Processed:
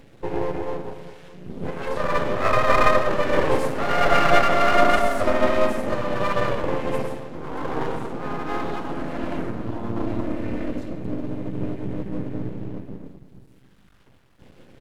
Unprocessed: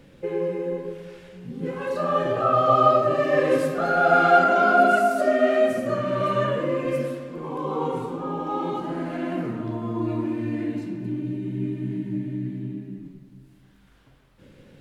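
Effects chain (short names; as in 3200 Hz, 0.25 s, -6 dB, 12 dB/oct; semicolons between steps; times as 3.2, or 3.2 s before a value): half-wave rectifier; harmoniser -3 st -4 dB; gain +2.5 dB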